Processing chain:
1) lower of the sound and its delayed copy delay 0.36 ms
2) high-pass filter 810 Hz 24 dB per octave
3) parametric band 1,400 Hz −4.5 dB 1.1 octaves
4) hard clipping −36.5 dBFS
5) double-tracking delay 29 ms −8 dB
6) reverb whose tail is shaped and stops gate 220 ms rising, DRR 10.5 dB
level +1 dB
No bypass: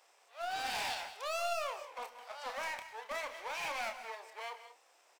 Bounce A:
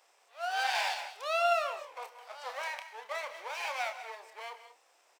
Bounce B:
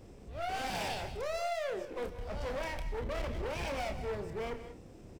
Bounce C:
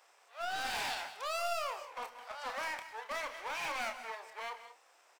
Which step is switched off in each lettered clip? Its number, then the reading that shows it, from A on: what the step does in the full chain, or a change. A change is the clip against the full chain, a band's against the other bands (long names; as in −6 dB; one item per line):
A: 4, distortion level −6 dB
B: 2, 250 Hz band +18.5 dB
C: 3, 250 Hz band +2.5 dB